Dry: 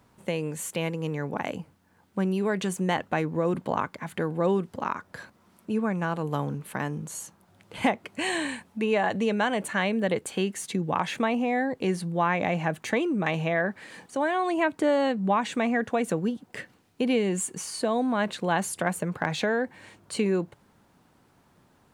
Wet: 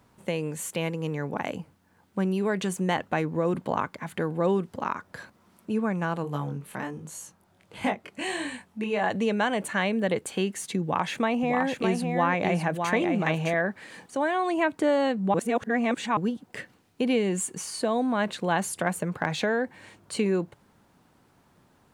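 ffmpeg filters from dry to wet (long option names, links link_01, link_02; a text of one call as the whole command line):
ffmpeg -i in.wav -filter_complex "[0:a]asplit=3[link_01][link_02][link_03];[link_01]afade=type=out:start_time=6.23:duration=0.02[link_04];[link_02]flanger=delay=20:depth=4.5:speed=1.4,afade=type=in:start_time=6.23:duration=0.02,afade=type=out:start_time=9:duration=0.02[link_05];[link_03]afade=type=in:start_time=9:duration=0.02[link_06];[link_04][link_05][link_06]amix=inputs=3:normalize=0,asettb=1/sr,asplit=3[link_07][link_08][link_09];[link_07]atrim=end=10.824[link_10];[link_08]atrim=start=10.82:end=13.54,asetpts=PTS-STARTPTS,afade=type=in:duration=0.004:curve=qsin,afade=type=out:start_time=2.716:duration=0.004:curve=qsin,aecho=1:1:609:0.562,atrim=end_sample=119952[link_11];[link_09]atrim=start=13.536[link_12];[link_10][link_11]acrossfade=duration=0.004:curve1=hsin:curve2=qsin[link_13];[link_13][link_12]acrossfade=duration=0.004:curve1=qsin:curve2=hsin,asplit=3[link_14][link_15][link_16];[link_14]atrim=end=15.342[link_17];[link_15]atrim=start=15.338:end=16.172,asetpts=PTS-STARTPTS,areverse[link_18];[link_16]atrim=start=16.168[link_19];[link_17][link_18]acrossfade=duration=0.004:curve1=hsin:curve2=hsin[link_20];[link_20][link_19]acrossfade=duration=0.004:curve1=hsin:curve2=hsin" out.wav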